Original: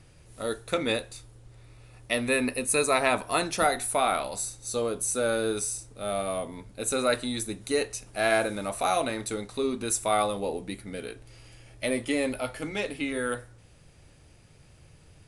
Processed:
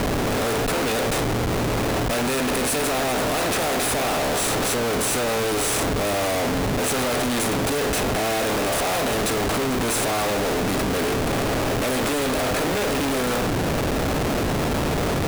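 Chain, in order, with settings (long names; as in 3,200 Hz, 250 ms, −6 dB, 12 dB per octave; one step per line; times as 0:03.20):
compressor on every frequency bin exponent 0.4
dynamic equaliser 1,800 Hz, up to −4 dB, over −35 dBFS, Q 0.78
comparator with hysteresis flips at −29 dBFS
level +1.5 dB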